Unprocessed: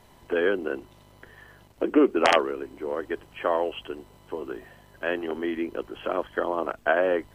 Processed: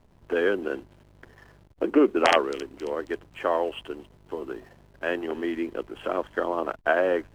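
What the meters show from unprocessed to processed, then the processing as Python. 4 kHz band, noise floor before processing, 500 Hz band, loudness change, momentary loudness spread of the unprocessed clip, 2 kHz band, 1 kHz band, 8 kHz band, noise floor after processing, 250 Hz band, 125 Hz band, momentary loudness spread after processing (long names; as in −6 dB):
0.0 dB, −55 dBFS, 0.0 dB, 0.0 dB, 16 LU, 0.0 dB, 0.0 dB, +0.5 dB, −57 dBFS, 0.0 dB, 0.0 dB, 16 LU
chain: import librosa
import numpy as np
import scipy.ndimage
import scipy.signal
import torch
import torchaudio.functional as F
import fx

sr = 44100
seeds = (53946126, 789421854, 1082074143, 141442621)

y = fx.echo_wet_highpass(x, sr, ms=270, feedback_pct=45, hz=4300.0, wet_db=-9.5)
y = fx.backlash(y, sr, play_db=-45.5)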